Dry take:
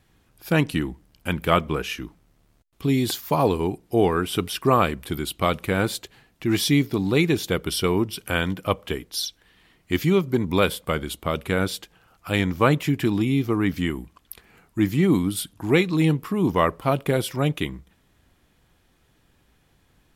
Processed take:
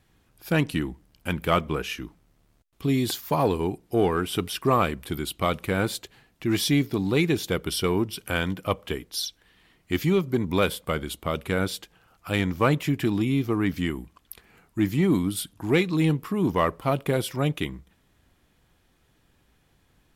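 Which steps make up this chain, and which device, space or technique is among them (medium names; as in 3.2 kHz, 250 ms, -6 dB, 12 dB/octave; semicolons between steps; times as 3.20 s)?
parallel distortion (in parallel at -8 dB: hard clipper -15.5 dBFS, distortion -13 dB); on the sum: trim -5 dB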